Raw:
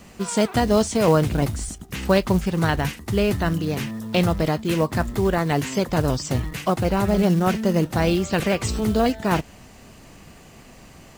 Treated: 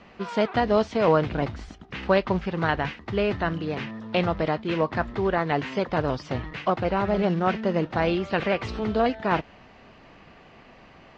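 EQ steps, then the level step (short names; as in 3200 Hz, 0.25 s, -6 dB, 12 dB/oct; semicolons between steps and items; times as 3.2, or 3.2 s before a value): LPF 7300 Hz 24 dB/oct; air absorption 310 m; low shelf 320 Hz -12 dB; +2.5 dB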